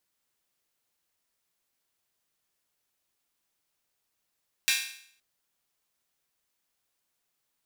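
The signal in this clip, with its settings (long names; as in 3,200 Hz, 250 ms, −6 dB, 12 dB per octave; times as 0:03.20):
open synth hi-hat length 0.52 s, high-pass 2,200 Hz, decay 0.61 s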